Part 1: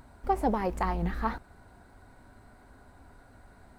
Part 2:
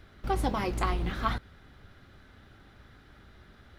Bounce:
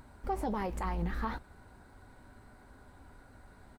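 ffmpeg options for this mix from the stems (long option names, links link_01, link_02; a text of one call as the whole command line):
ffmpeg -i stem1.wav -i stem2.wav -filter_complex "[0:a]bandreject=frequency=690:width=12,alimiter=limit=-24dB:level=0:latency=1:release=73,volume=-1dB[link_01];[1:a]asplit=2[link_02][link_03];[link_03]afreqshift=-1.3[link_04];[link_02][link_04]amix=inputs=2:normalize=1,adelay=7.9,volume=-16dB[link_05];[link_01][link_05]amix=inputs=2:normalize=0" out.wav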